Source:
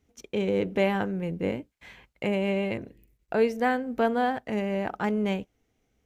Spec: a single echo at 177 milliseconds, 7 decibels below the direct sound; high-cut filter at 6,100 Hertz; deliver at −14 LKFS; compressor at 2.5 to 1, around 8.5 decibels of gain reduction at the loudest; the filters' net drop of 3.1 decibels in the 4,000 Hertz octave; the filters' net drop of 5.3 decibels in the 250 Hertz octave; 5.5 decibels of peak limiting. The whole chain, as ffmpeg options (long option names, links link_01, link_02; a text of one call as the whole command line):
ffmpeg -i in.wav -af "lowpass=6100,equalizer=frequency=250:width_type=o:gain=-7,equalizer=frequency=4000:width_type=o:gain=-4.5,acompressor=threshold=-33dB:ratio=2.5,alimiter=level_in=2.5dB:limit=-24dB:level=0:latency=1,volume=-2.5dB,aecho=1:1:177:0.447,volume=23dB" out.wav